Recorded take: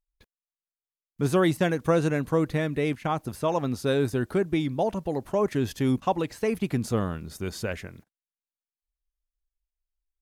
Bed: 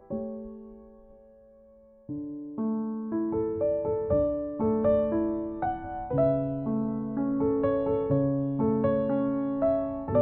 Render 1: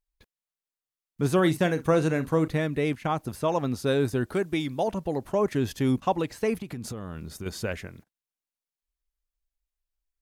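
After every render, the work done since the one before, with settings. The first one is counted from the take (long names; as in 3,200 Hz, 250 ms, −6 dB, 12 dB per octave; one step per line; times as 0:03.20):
0:01.34–0:02.48: double-tracking delay 44 ms −13.5 dB
0:04.34–0:04.88: spectral tilt +1.5 dB per octave
0:06.54–0:07.46: downward compressor 16 to 1, threshold −31 dBFS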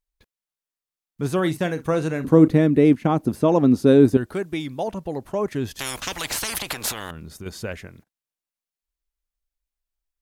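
0:02.24–0:04.17: parametric band 270 Hz +14.5 dB 2 octaves
0:05.79–0:07.11: every bin compressed towards the loudest bin 10 to 1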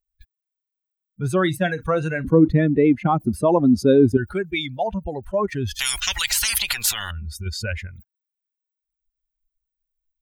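spectral dynamics exaggerated over time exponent 2
envelope flattener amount 50%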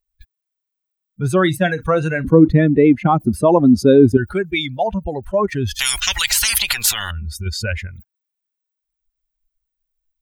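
level +4.5 dB
brickwall limiter −1 dBFS, peak gain reduction 1 dB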